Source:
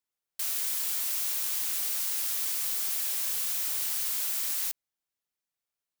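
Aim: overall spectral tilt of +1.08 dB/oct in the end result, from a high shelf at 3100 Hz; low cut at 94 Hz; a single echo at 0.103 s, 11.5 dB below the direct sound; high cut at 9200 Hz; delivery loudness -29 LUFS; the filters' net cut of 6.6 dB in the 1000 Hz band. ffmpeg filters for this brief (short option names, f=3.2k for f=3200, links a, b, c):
-af "highpass=94,lowpass=9.2k,equalizer=f=1k:t=o:g=-8,highshelf=f=3.1k:g=-5.5,aecho=1:1:103:0.266,volume=10dB"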